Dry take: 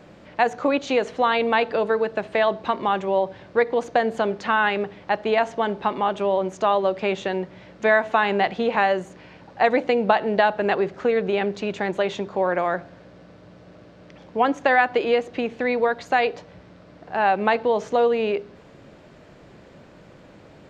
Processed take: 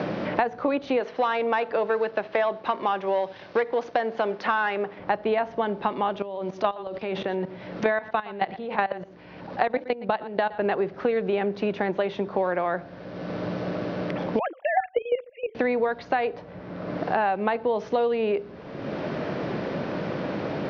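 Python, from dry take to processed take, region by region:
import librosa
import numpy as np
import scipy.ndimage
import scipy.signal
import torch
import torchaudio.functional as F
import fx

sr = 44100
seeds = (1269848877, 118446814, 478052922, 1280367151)

y = fx.chain(x, sr, fx.leveller(passes=1),
    fx.highpass(hz=540.0, slope=6), at=(1.0, 4.99))
y = fx.chain(y, sr, fx.peak_eq(hz=4400.0, db=4.0, octaves=1.2),
    fx.level_steps(step_db=18),
    fx.echo_single(ms=117, db=-18.0), at=(6.22, 10.58))
y = fx.chain(y, sr, fx.sine_speech(),
    fx.highpass(hz=290.0, slope=24),
    fx.level_steps(step_db=14), at=(14.39, 15.55))
y = scipy.signal.sosfilt(scipy.signal.butter(12, 5900.0, 'lowpass', fs=sr, output='sos'), y)
y = fx.high_shelf(y, sr, hz=2800.0, db=-9.0)
y = fx.band_squash(y, sr, depth_pct=100)
y = F.gain(torch.from_numpy(y), -3.0).numpy()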